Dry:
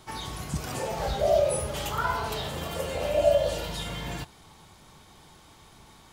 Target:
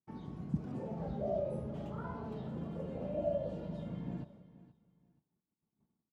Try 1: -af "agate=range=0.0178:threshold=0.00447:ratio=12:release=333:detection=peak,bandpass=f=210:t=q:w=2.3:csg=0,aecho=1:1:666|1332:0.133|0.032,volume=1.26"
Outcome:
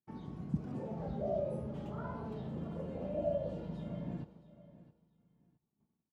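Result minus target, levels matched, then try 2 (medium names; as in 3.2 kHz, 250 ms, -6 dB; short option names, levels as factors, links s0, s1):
echo 190 ms late
-af "agate=range=0.0178:threshold=0.00447:ratio=12:release=333:detection=peak,bandpass=f=210:t=q:w=2.3:csg=0,aecho=1:1:476|952:0.133|0.032,volume=1.26"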